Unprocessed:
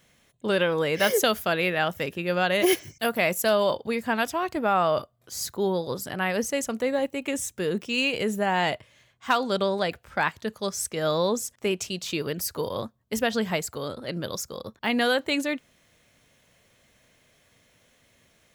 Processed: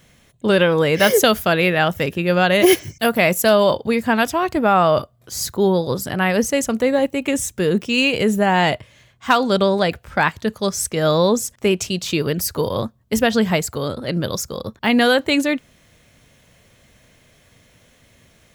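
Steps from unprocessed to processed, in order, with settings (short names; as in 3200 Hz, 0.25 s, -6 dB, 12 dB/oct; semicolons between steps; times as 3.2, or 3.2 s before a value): low shelf 200 Hz +7.5 dB; gain +7 dB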